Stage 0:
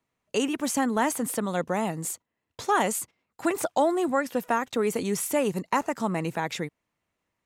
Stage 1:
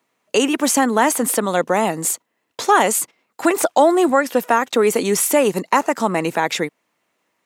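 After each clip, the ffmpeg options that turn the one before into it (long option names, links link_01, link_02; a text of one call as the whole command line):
ffmpeg -i in.wav -filter_complex "[0:a]highpass=260,asplit=2[link_01][link_02];[link_02]alimiter=limit=-19.5dB:level=0:latency=1:release=253,volume=-1dB[link_03];[link_01][link_03]amix=inputs=2:normalize=0,volume=6.5dB" out.wav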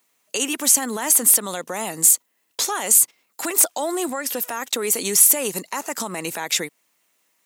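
ffmpeg -i in.wav -af "alimiter=limit=-13dB:level=0:latency=1:release=114,crystalizer=i=5:c=0,volume=-6dB" out.wav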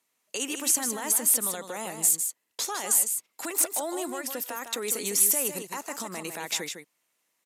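ffmpeg -i in.wav -af "aecho=1:1:155:0.422,aresample=32000,aresample=44100,volume=-8dB" out.wav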